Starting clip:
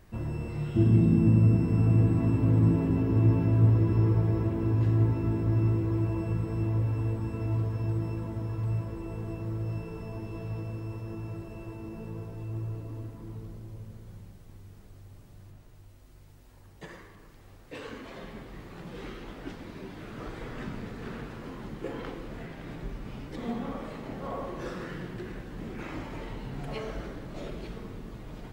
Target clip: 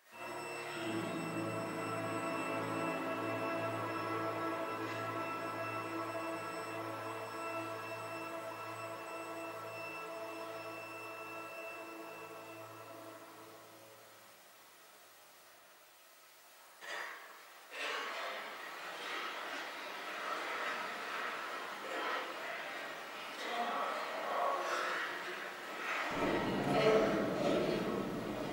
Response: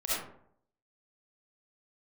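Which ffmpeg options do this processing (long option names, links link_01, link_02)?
-filter_complex "[0:a]asetnsamples=nb_out_samples=441:pad=0,asendcmd='26.11 highpass f 210',highpass=940[link_01];[1:a]atrim=start_sample=2205,afade=type=out:start_time=0.23:duration=0.01,atrim=end_sample=10584[link_02];[link_01][link_02]afir=irnorm=-1:irlink=0,volume=1dB"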